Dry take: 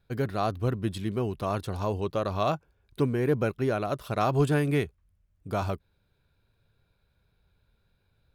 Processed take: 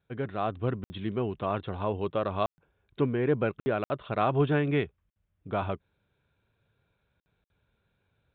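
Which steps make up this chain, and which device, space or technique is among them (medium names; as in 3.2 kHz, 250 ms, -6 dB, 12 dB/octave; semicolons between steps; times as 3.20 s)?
call with lost packets (high-pass 120 Hz 6 dB/octave; resampled via 8 kHz; level rider gain up to 3.5 dB; lost packets of 60 ms); trim -3.5 dB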